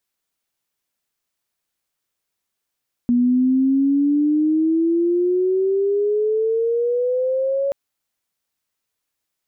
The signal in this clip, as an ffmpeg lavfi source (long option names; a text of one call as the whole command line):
ffmpeg -f lavfi -i "aevalsrc='pow(10,(-13-4.5*t/4.63)/20)*sin(2*PI*240*4.63/log(560/240)*(exp(log(560/240)*t/4.63)-1))':duration=4.63:sample_rate=44100" out.wav